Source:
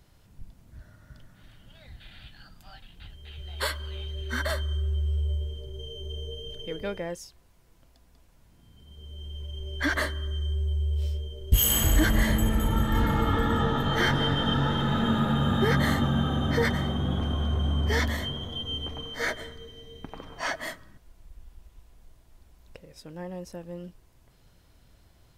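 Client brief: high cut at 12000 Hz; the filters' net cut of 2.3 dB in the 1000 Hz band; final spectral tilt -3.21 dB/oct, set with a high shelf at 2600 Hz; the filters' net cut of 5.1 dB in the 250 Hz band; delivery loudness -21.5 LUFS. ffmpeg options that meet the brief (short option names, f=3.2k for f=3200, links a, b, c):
-af "lowpass=12k,equalizer=f=250:t=o:g=-6.5,equalizer=f=1k:t=o:g=-4.5,highshelf=f=2.6k:g=8.5,volume=5dB"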